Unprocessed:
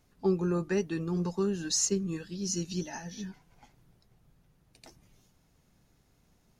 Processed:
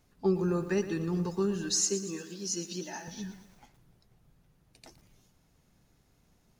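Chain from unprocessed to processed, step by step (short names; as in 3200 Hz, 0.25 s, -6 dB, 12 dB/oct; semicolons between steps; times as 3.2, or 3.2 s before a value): 1.71–3.08 HPF 270 Hz 12 dB/oct; lo-fi delay 0.117 s, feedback 55%, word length 9-bit, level -12 dB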